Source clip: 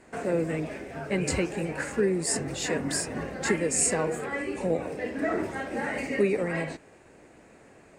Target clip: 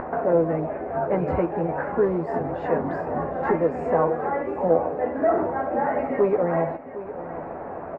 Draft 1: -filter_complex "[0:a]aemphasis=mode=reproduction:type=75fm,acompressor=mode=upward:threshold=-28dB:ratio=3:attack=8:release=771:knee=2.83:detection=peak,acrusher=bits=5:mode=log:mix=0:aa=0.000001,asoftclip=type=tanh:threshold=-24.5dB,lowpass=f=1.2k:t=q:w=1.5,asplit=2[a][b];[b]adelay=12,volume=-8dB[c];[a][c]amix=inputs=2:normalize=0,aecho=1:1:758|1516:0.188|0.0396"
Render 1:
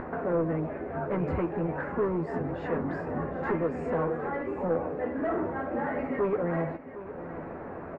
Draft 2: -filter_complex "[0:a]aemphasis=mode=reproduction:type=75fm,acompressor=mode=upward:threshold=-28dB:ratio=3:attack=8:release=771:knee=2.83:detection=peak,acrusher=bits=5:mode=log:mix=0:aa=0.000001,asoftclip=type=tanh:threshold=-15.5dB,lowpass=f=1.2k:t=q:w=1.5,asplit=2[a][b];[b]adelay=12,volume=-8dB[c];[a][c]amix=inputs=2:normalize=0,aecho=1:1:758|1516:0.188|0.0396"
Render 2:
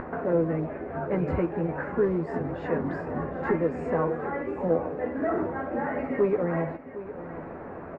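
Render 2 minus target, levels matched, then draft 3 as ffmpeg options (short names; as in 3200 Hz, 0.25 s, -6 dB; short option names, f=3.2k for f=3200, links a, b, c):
1000 Hz band -3.5 dB
-filter_complex "[0:a]aemphasis=mode=reproduction:type=75fm,acompressor=mode=upward:threshold=-28dB:ratio=3:attack=8:release=771:knee=2.83:detection=peak,acrusher=bits=5:mode=log:mix=0:aa=0.000001,asoftclip=type=tanh:threshold=-15.5dB,lowpass=f=1.2k:t=q:w=1.5,equalizer=f=730:w=1.2:g=9.5,asplit=2[a][b];[b]adelay=12,volume=-8dB[c];[a][c]amix=inputs=2:normalize=0,aecho=1:1:758|1516:0.188|0.0396"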